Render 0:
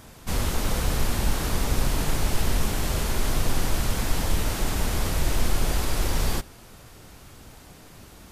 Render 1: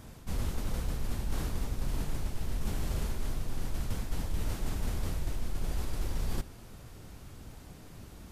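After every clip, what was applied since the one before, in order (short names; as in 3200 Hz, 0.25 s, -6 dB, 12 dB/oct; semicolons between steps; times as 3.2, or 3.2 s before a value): low shelf 360 Hz +8 dB; reverse; compressor 10:1, threshold -20 dBFS, peak gain reduction 13.5 dB; reverse; gain -7 dB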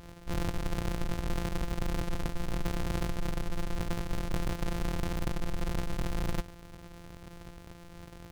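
sample sorter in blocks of 256 samples; Doppler distortion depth 0.23 ms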